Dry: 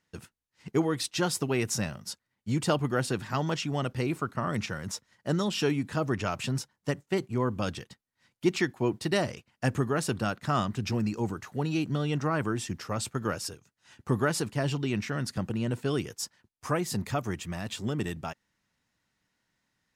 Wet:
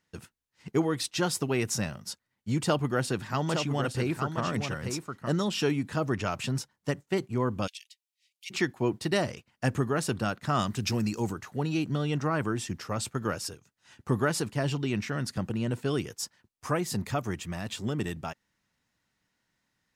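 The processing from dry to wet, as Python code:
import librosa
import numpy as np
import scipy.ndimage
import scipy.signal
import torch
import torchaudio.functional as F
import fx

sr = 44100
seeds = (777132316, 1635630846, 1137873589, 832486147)

y = fx.echo_single(x, sr, ms=865, db=-6.5, at=(2.61, 5.29))
y = fx.steep_highpass(y, sr, hz=2300.0, slope=48, at=(7.66, 8.5), fade=0.02)
y = fx.high_shelf(y, sr, hz=3900.0, db=10.0, at=(10.59, 11.33))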